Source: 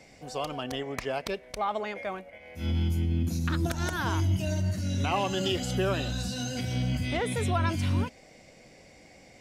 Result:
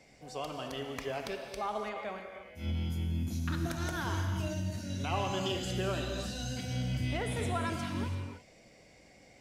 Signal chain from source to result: non-linear reverb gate 0.36 s flat, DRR 3.5 dB; gain -6.5 dB

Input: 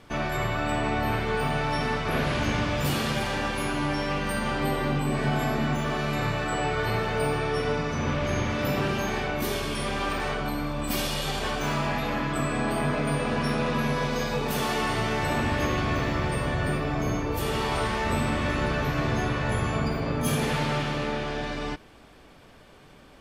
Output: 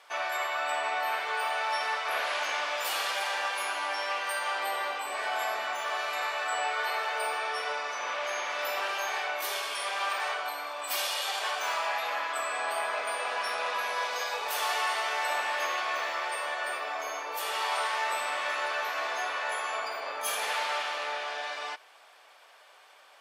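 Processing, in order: HPF 650 Hz 24 dB/oct

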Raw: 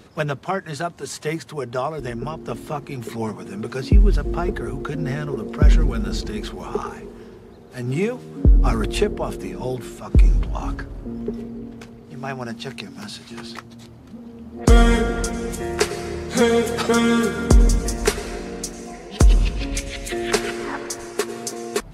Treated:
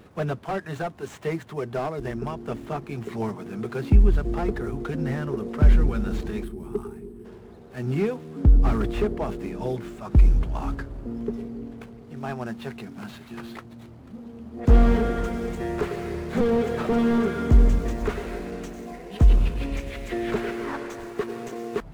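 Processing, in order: median filter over 9 samples; spectral gain 6.44–7.25, 450–7700 Hz -14 dB; slew limiter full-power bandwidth 59 Hz; gain -2 dB

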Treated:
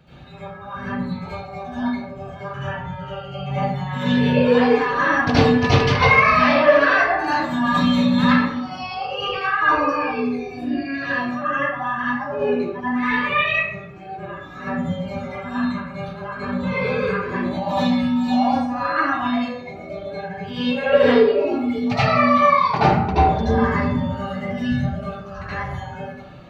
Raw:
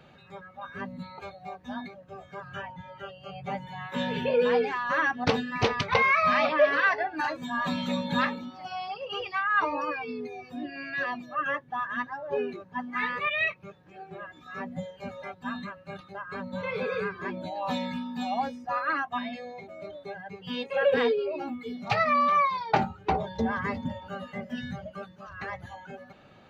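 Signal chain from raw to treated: tone controls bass +9 dB, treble +3 dB; reverb RT60 0.80 s, pre-delay 71 ms, DRR -12 dB; gain -4 dB

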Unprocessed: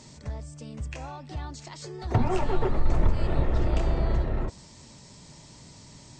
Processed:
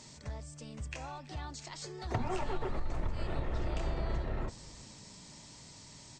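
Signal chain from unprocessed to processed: tilt shelf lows -3 dB, about 780 Hz; compressor, threshold -25 dBFS, peak gain reduction 7.5 dB; on a send: frequency-shifting echo 0.33 s, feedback 58%, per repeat -82 Hz, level -22 dB; on the sum: gain -4 dB

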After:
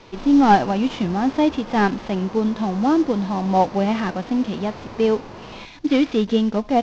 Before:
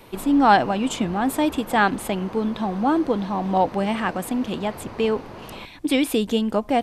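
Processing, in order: CVSD 32 kbps; harmonic-percussive split harmonic +8 dB; gain -4 dB

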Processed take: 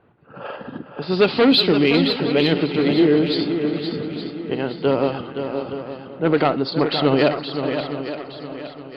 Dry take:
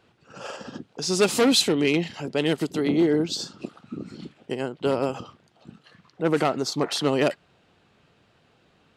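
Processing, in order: regenerating reverse delay 0.355 s, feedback 55%, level -13 dB; steep low-pass 4700 Hz 96 dB/oct; low-pass opened by the level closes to 1400 Hz, open at -19 dBFS; in parallel at -12 dB: soft clip -18 dBFS, distortion -12 dB; on the sum: swung echo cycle 0.867 s, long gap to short 1.5:1, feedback 35%, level -8 dB; reverb RT60 0.35 s, pre-delay 7 ms, DRR 17.5 dB; gain +3 dB

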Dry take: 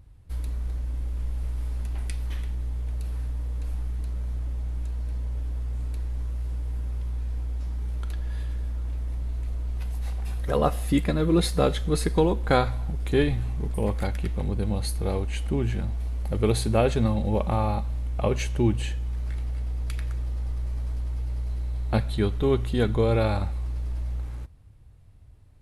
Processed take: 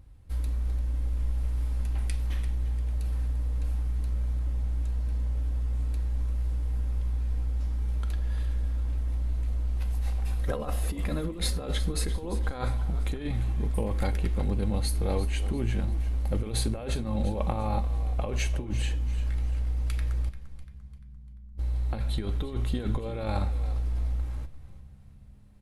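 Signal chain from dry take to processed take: 20.3–21.58 tilt -3.5 dB/oct; negative-ratio compressor -25 dBFS, ratio -0.5; frequency-shifting echo 0.345 s, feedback 43%, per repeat -66 Hz, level -14 dB; on a send at -11.5 dB: reverb, pre-delay 4 ms; on the sum: gain -3.5 dB

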